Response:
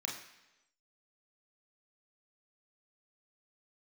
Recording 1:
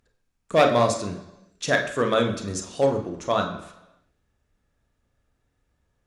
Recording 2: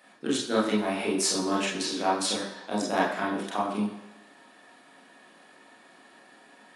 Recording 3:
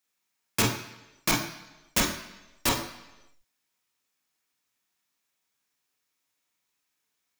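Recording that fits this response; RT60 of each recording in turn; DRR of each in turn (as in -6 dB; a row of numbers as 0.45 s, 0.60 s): 3; 1.0 s, 1.0 s, 1.0 s; 4.0 dB, -5.0 dB, -1.0 dB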